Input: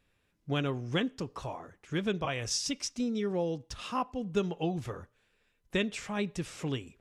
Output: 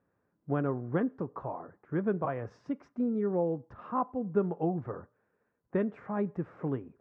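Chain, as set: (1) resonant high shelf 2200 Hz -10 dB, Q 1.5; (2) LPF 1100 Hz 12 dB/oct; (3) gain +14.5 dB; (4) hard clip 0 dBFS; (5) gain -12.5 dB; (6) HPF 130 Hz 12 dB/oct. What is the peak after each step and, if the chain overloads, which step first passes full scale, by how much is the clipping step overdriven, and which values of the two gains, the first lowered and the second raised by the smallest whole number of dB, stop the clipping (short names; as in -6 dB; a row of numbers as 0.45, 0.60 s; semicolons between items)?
-18.0, -18.0, -3.5, -3.5, -16.0, -16.5 dBFS; no overload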